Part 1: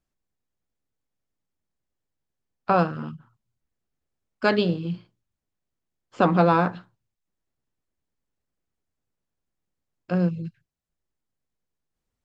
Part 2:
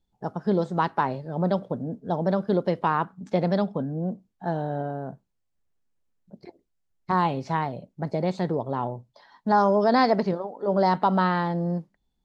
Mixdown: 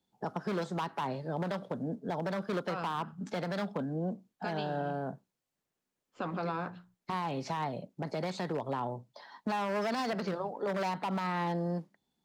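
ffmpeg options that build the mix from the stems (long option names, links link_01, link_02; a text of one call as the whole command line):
ffmpeg -i stem1.wav -i stem2.wav -filter_complex "[0:a]bandreject=frequency=60:width_type=h:width=6,bandreject=frequency=120:width_type=h:width=6,bandreject=frequency=180:width_type=h:width=6,agate=range=-10dB:threshold=-50dB:ratio=16:detection=peak,volume=-12dB[link_01];[1:a]asoftclip=type=hard:threshold=-19dB,highpass=170,volume=2.5dB[link_02];[link_01][link_02]amix=inputs=2:normalize=0,acrossover=split=180|1000[link_03][link_04][link_05];[link_03]acompressor=threshold=-41dB:ratio=4[link_06];[link_04]acompressor=threshold=-35dB:ratio=4[link_07];[link_05]acompressor=threshold=-34dB:ratio=4[link_08];[link_06][link_07][link_08]amix=inputs=3:normalize=0,alimiter=level_in=0.5dB:limit=-24dB:level=0:latency=1:release=51,volume=-0.5dB" out.wav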